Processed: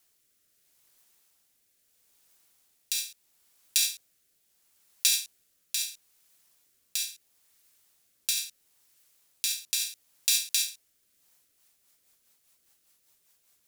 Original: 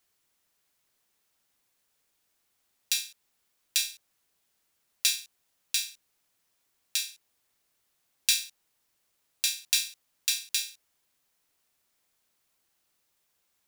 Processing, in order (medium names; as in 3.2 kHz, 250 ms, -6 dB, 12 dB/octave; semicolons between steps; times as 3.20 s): treble shelf 5.1 kHz +8.5 dB; in parallel at +1.5 dB: compressor with a negative ratio -27 dBFS, ratio -1; on the sum: rotary cabinet horn 0.75 Hz, later 5 Hz, at 10.98 s; trim -5 dB